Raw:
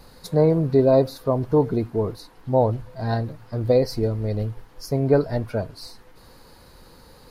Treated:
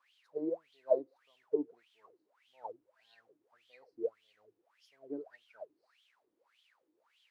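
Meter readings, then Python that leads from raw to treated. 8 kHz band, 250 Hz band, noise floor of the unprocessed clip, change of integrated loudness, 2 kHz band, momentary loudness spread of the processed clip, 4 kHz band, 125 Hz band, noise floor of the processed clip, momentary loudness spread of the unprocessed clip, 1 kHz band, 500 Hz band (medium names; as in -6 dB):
no reading, -20.5 dB, -50 dBFS, -16.0 dB, -23.5 dB, 20 LU, under -25 dB, under -40 dB, -80 dBFS, 12 LU, -22.5 dB, -17.5 dB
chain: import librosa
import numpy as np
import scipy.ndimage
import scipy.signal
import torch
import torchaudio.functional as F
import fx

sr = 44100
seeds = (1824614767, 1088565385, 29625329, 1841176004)

y = fx.bass_treble(x, sr, bass_db=-11, treble_db=9)
y = fx.dmg_noise_colour(y, sr, seeds[0], colour='white', level_db=-40.0)
y = fx.wah_lfo(y, sr, hz=1.7, low_hz=300.0, high_hz=3300.0, q=13.0)
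y = fx.upward_expand(y, sr, threshold_db=-50.0, expansion=1.5)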